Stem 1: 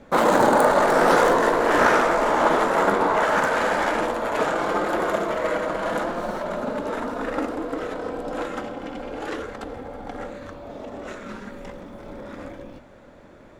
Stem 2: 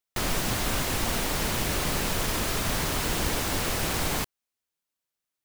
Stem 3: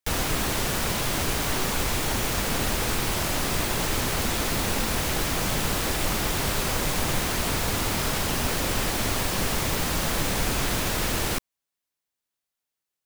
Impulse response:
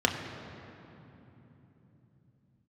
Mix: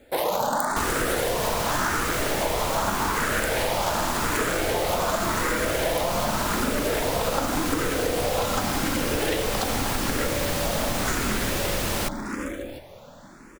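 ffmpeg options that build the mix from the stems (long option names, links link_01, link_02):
-filter_complex "[0:a]aemphasis=mode=production:type=75kf,dynaudnorm=framelen=610:gausssize=9:maxgain=12.5dB,asplit=2[link_01][link_02];[link_02]afreqshift=0.87[link_03];[link_01][link_03]amix=inputs=2:normalize=1,volume=2.5dB[link_04];[2:a]adelay=700,volume=1dB[link_05];[link_04][link_05]amix=inputs=2:normalize=0,acompressor=threshold=-21dB:ratio=6"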